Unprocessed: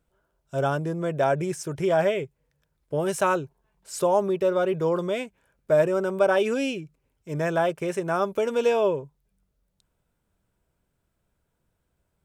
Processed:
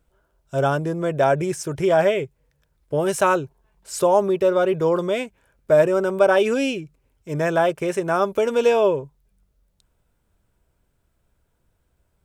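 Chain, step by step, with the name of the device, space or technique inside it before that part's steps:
low shelf boost with a cut just above (low-shelf EQ 87 Hz +6 dB; parametric band 170 Hz −3.5 dB 0.68 octaves)
level +4.5 dB

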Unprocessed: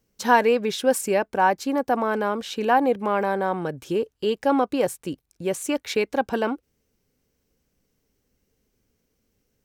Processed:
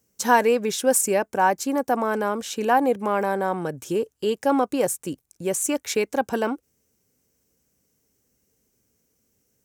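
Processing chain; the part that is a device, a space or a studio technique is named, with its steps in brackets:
budget condenser microphone (high-pass filter 68 Hz; high shelf with overshoot 5,300 Hz +7 dB, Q 1.5)

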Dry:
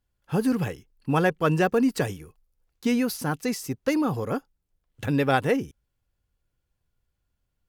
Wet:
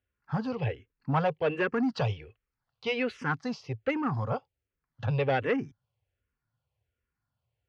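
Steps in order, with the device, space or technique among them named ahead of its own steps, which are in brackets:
0:01.94–0:03.35: parametric band 3,100 Hz +5 dB 2.4 octaves
barber-pole phaser into a guitar amplifier (frequency shifter mixed with the dry sound −1.3 Hz; soft clipping −20 dBFS, distortion −16 dB; loudspeaker in its box 91–4,000 Hz, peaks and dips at 110 Hz +6 dB, 190 Hz −8 dB, 320 Hz −9 dB, 3,700 Hz −6 dB)
level +2 dB

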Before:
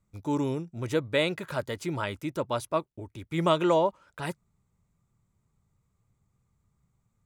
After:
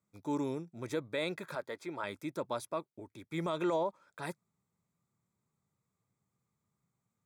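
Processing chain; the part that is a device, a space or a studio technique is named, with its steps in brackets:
PA system with an anti-feedback notch (high-pass filter 170 Hz 12 dB per octave; Butterworth band-reject 2,900 Hz, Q 6.5; brickwall limiter −18.5 dBFS, peak gain reduction 8 dB)
0:01.55–0:02.04: bass and treble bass −11 dB, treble −9 dB
level −5.5 dB

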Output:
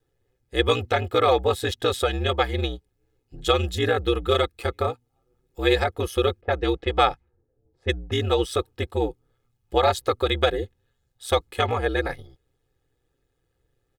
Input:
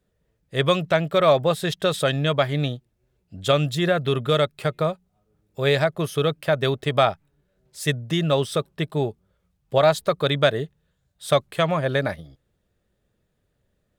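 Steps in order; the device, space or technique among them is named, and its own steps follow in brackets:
ring-modulated robot voice (ring modulation 63 Hz; comb filter 2.4 ms, depth 78%)
0:06.41–0:08.12: low-pass that shuts in the quiet parts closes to 440 Hz, open at −17.5 dBFS

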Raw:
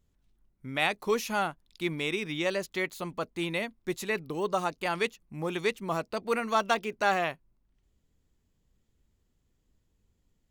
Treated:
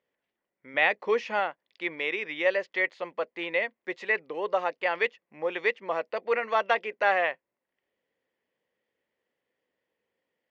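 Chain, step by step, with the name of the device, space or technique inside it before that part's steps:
phone earpiece (loudspeaker in its box 500–4,000 Hz, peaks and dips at 520 Hz +9 dB, 1,300 Hz −4 dB, 1,900 Hz +8 dB, 3,900 Hz −8 dB)
0:00.74–0:01.40: low-shelf EQ 230 Hz +9.5 dB
level +1.5 dB

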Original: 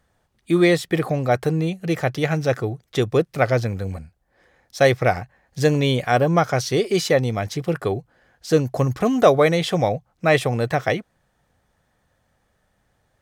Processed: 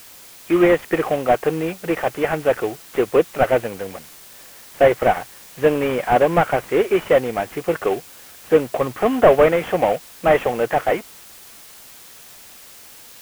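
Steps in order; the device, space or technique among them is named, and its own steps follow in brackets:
army field radio (band-pass filter 360–2,900 Hz; variable-slope delta modulation 16 kbit/s; white noise bed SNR 23 dB)
level +6 dB

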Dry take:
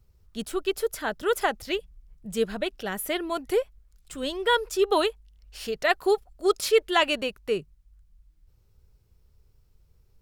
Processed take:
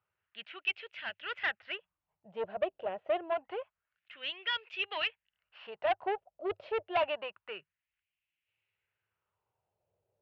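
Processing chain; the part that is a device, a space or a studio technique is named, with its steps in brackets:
wah-wah guitar rig (LFO wah 0.27 Hz 590–2,500 Hz, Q 2.9; tube saturation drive 30 dB, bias 0.55; loudspeaker in its box 100–3,400 Hz, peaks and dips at 100 Hz +9 dB, 250 Hz −9 dB, 430 Hz −4 dB, 630 Hz +3 dB, 1,200 Hz −4 dB, 2,800 Hz +8 dB)
level +5 dB

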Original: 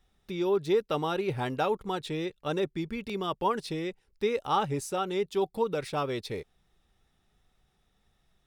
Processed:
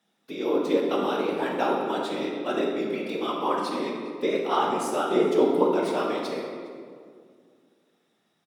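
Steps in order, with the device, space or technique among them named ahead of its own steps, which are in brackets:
0:05.11–0:05.63: low-shelf EQ 430 Hz +10 dB
single-tap delay 409 ms −23 dB
whispering ghost (random phases in short frames; high-pass filter 220 Hz 24 dB per octave; convolution reverb RT60 2.1 s, pre-delay 10 ms, DRR −1 dB)

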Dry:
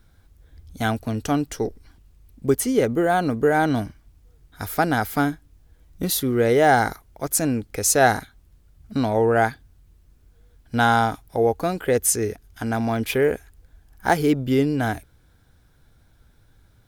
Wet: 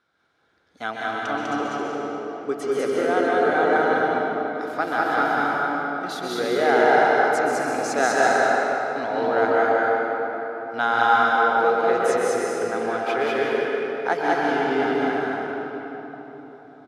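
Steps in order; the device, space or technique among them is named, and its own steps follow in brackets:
station announcement (band-pass filter 390–4,300 Hz; parametric band 1,300 Hz +6 dB 0.39 octaves; loudspeakers that aren't time-aligned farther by 68 metres −1 dB, 94 metres −9 dB; convolution reverb RT60 4.1 s, pre-delay 119 ms, DRR −3.5 dB)
level −5.5 dB

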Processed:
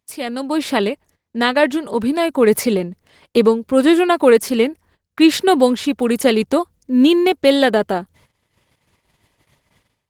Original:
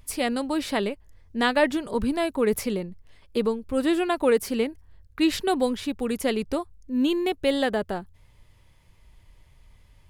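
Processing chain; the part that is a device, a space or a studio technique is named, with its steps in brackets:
video call (high-pass filter 160 Hz 12 dB per octave; automatic gain control gain up to 14 dB; noise gate −49 dBFS, range −18 dB; Opus 16 kbit/s 48,000 Hz)

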